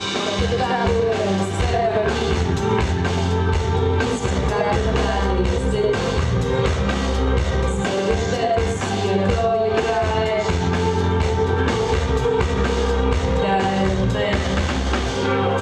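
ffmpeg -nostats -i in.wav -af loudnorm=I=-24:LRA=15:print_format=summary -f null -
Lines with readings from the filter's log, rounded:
Input Integrated:    -20.2 LUFS
Input True Peak:      -5.4 dBTP
Input LRA:             0.5 LU
Input Threshold:     -30.2 LUFS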